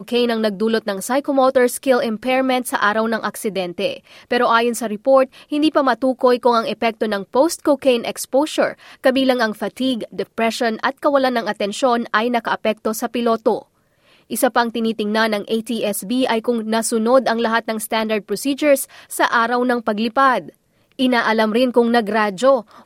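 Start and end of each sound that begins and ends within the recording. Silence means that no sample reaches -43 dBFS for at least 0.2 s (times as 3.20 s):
14.09–20.55 s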